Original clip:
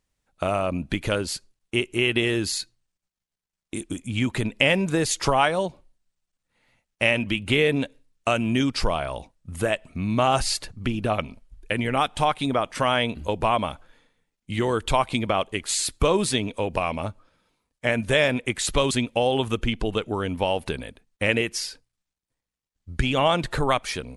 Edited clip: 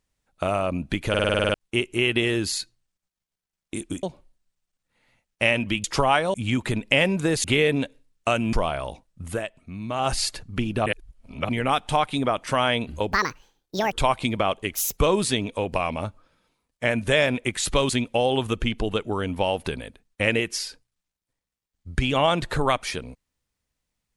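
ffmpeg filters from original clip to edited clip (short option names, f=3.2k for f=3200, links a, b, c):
-filter_complex "[0:a]asplit=23[a][b][c][d][e][f][g][h][i][j][k][l][m][n][o][p][q][r][s][t][u][v][w];[a]atrim=end=1.142[x];[b]atrim=start=1.088:end=1.142[y];[c]atrim=start=1.088:end=1.142[z];[d]atrim=start=1.088:end=1.142[aa];[e]atrim=start=1.088:end=1.142[ab];[f]atrim=start=1.088:end=1.142[ac];[g]atrim=start=1.088:end=1.142[ad];[h]atrim=start=1.088:end=1.142[ae];[i]atrim=start=1.088:end=1.142[af];[j]atrim=start=1.538:end=4.032[ag];[k]atrim=start=5.628:end=7.442[ah];[l]atrim=start=5.128:end=5.632[ai];[m]atrim=start=4.028:end=5.132[aj];[n]atrim=start=7.438:end=8.532[ak];[o]atrim=start=8.808:end=9.74,asetpts=PTS-STARTPTS,afade=t=out:st=0.712:d=0.22:silence=0.375837[al];[p]atrim=start=9.74:end=10.22,asetpts=PTS-STARTPTS,volume=-8.5dB[am];[q]atrim=start=10.22:end=11.142,asetpts=PTS-STARTPTS,afade=t=in:d=0.22:silence=0.375837[an];[r]atrim=start=11.138:end=11.772,asetpts=PTS-STARTPTS,areverse[ao];[s]atrim=start=11.768:end=13.404[ap];[t]atrim=start=13.4:end=14.82,asetpts=PTS-STARTPTS,asetrate=78057,aresample=44100[aq];[u]atrim=start=14.816:end=15.644[ar];[v]atrim=start=15.64:end=15.99,asetpts=PTS-STARTPTS,asetrate=66150,aresample=44100[as];[w]atrim=start=15.986[at];[x][y]acrossfade=d=0.004:c1=hsin:c2=hsin[au];[au][z]acrossfade=d=0.004:c1=hsin:c2=hsin[av];[av][aa]acrossfade=d=0.004:c1=hsin:c2=hsin[aw];[aw][ab]acrossfade=d=0.004:c1=hsin:c2=hsin[ax];[ax][ac]acrossfade=d=0.004:c1=hsin:c2=hsin[ay];[ay][ad]acrossfade=d=0.004:c1=hsin:c2=hsin[az];[az][ae]acrossfade=d=0.004:c1=hsin:c2=hsin[ba];[ba][af]acrossfade=d=0.004:c1=hsin:c2=hsin[bb];[bb][ag]acrossfade=d=0.004:c1=hsin:c2=hsin[bc];[bc][ah]acrossfade=d=0.004:c1=hsin:c2=hsin[bd];[bd][ai]acrossfade=d=0.004:c1=hsin:c2=hsin[be];[be][aj]acrossfade=d=0.004:c1=hsin:c2=hsin[bf];[bf][ak]acrossfade=d=0.004:c1=hsin:c2=hsin[bg];[al][am][an]concat=n=3:v=0:a=1[bh];[bg][bh]acrossfade=d=0.004:c1=hsin:c2=hsin[bi];[bi][ao]acrossfade=d=0.004:c1=hsin:c2=hsin[bj];[bj][ap]acrossfade=d=0.004:c1=hsin:c2=hsin[bk];[bk][aq]acrossfade=d=0.004:c1=hsin:c2=hsin[bl];[bl][ar]acrossfade=d=0.004:c1=hsin:c2=hsin[bm];[bm][as]acrossfade=d=0.004:c1=hsin:c2=hsin[bn];[bn][at]acrossfade=d=0.004:c1=hsin:c2=hsin"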